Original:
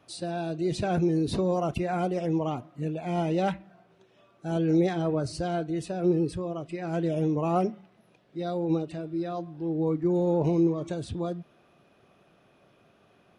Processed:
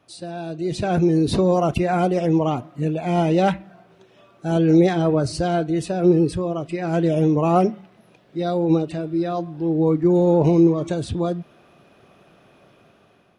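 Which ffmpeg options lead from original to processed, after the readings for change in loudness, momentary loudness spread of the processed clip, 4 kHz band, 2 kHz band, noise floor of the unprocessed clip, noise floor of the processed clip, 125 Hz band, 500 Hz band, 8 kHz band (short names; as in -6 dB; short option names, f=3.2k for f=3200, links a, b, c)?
+8.5 dB, 10 LU, +7.5 dB, +8.0 dB, -63 dBFS, -56 dBFS, +8.0 dB, +8.0 dB, +7.0 dB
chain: -af "dynaudnorm=f=340:g=5:m=8.5dB"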